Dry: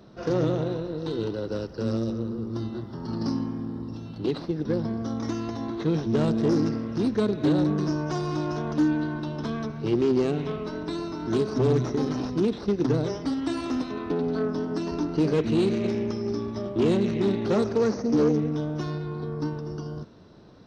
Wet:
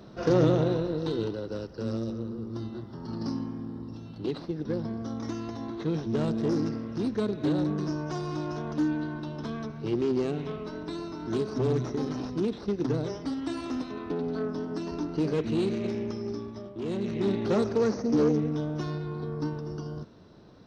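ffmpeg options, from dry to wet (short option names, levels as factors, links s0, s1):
-af "volume=4.73,afade=t=out:st=0.86:d=0.57:silence=0.446684,afade=t=out:st=16.22:d=0.59:silence=0.375837,afade=t=in:st=16.81:d=0.54:silence=0.281838"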